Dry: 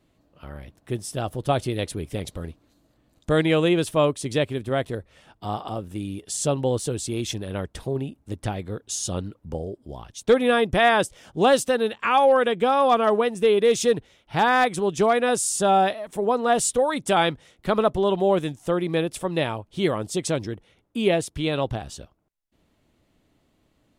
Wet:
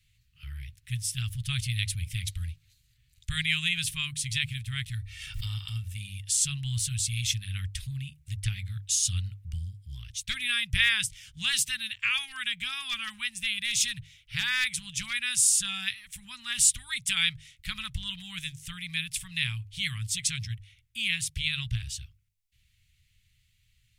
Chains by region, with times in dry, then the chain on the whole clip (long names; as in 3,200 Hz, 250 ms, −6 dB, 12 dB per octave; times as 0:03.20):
0:04.95–0:05.93: comb filter 2.2 ms, depth 50% + background raised ahead of every attack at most 54 dB per second
whole clip: Chebyshev band-stop filter 110–2,200 Hz, order 3; mains-hum notches 50/100/150 Hz; level +4 dB